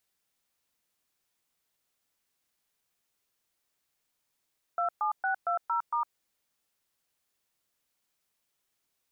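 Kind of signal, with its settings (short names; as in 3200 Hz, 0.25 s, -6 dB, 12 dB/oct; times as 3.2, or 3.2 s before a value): DTMF "27620*", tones 0.108 s, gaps 0.121 s, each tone -28.5 dBFS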